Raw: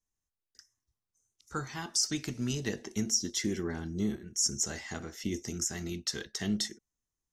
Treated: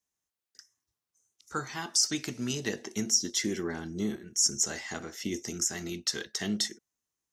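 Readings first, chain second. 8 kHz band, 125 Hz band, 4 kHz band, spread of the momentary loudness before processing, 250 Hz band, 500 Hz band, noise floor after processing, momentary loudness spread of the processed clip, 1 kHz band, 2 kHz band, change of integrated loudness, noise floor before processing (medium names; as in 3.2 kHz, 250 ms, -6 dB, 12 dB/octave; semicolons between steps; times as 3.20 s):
+3.5 dB, -3.0 dB, +3.5 dB, 9 LU, 0.0 dB, +2.0 dB, under -85 dBFS, 10 LU, +3.0 dB, +3.5 dB, +2.5 dB, under -85 dBFS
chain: high-pass 260 Hz 6 dB/octave; trim +3.5 dB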